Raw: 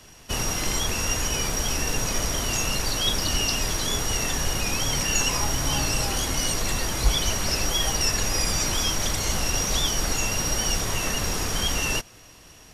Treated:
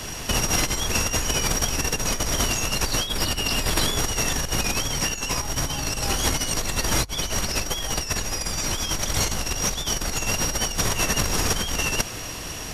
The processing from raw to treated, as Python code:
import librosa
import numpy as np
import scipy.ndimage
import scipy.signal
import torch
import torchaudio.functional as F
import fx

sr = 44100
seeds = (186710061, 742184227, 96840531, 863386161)

y = fx.notch(x, sr, hz=6100.0, q=5.2, at=(3.08, 3.97))
y = fx.over_compress(y, sr, threshold_db=-30.0, ratio=-0.5)
y = y * librosa.db_to_amplitude(8.0)